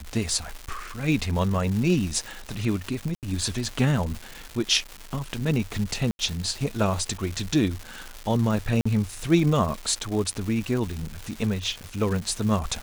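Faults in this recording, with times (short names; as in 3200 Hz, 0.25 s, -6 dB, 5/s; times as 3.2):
crackle 410/s -30 dBFS
3.15–3.23 gap 78 ms
6.11–6.19 gap 81 ms
8.81–8.86 gap 45 ms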